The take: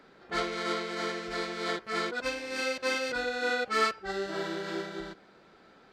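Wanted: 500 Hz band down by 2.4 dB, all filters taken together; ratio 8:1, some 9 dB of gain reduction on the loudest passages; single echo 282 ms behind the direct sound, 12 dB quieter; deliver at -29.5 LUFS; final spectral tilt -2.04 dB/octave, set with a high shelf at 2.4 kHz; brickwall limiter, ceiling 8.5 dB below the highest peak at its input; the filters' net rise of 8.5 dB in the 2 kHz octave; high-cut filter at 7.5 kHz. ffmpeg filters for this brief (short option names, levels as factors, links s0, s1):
-af "lowpass=7500,equalizer=f=500:t=o:g=-3.5,equalizer=f=2000:t=o:g=8,highshelf=f=2400:g=6.5,acompressor=threshold=0.0501:ratio=8,alimiter=limit=0.0631:level=0:latency=1,aecho=1:1:282:0.251,volume=1.33"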